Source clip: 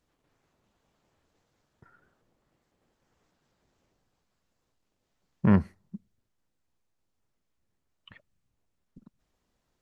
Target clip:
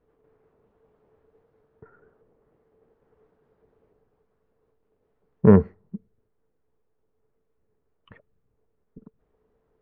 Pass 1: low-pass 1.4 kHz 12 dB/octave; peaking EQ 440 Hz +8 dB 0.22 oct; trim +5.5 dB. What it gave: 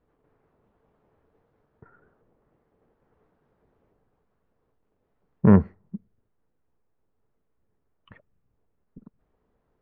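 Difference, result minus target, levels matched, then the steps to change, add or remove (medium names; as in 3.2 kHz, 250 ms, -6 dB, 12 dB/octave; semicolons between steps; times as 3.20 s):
500 Hz band -5.0 dB
change: peaking EQ 440 Hz +18 dB 0.22 oct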